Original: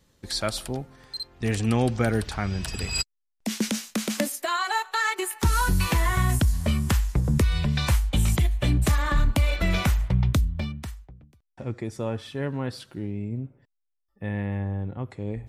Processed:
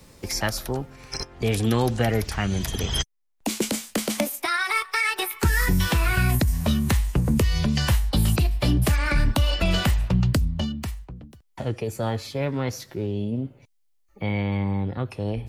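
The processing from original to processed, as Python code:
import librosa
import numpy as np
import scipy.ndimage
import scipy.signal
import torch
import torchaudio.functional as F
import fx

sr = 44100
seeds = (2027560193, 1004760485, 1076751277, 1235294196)

y = fx.formant_shift(x, sr, semitones=4)
y = fx.band_squash(y, sr, depth_pct=40)
y = F.gain(torch.from_numpy(y), 1.5).numpy()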